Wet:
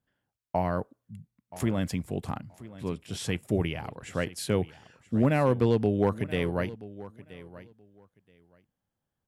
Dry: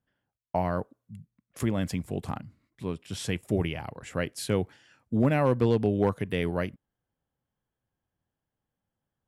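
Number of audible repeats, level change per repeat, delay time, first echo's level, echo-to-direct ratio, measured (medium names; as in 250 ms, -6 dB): 2, -15.5 dB, 977 ms, -17.5 dB, -17.5 dB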